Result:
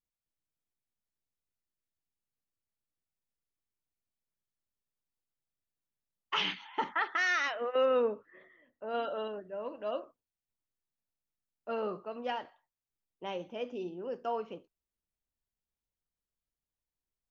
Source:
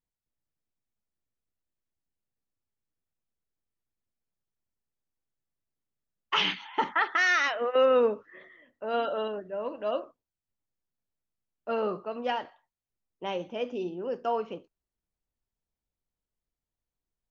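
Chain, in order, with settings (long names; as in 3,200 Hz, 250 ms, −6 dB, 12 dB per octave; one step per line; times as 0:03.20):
0:08.02–0:08.95: high-shelf EQ 3,200 Hz −9 dB
level −5.5 dB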